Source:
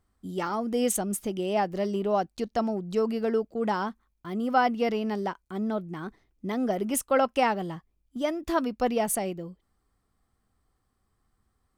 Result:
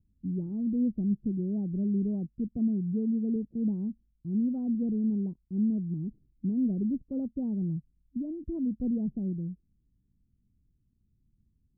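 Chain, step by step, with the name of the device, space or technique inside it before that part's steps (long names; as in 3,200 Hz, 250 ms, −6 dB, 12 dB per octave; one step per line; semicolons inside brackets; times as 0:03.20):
the neighbour's flat through the wall (low-pass filter 270 Hz 24 dB per octave; parametric band 150 Hz +5.5 dB 0.75 octaves)
0:02.57–0:03.36: high-pass filter 76 Hz
level +2.5 dB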